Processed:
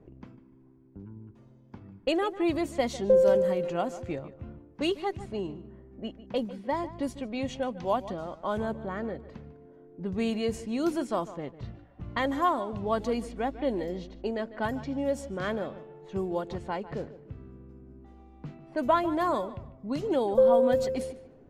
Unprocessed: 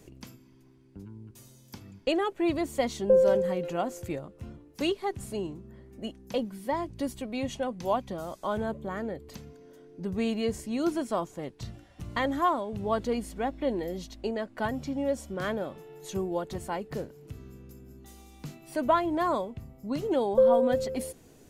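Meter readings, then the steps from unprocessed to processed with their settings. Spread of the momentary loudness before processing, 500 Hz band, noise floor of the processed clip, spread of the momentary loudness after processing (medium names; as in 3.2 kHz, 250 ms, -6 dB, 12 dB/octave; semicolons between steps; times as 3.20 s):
21 LU, +0.5 dB, -55 dBFS, 21 LU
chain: level-controlled noise filter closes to 1 kHz, open at -25 dBFS; filtered feedback delay 149 ms, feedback 27%, low-pass 3.3 kHz, level -15 dB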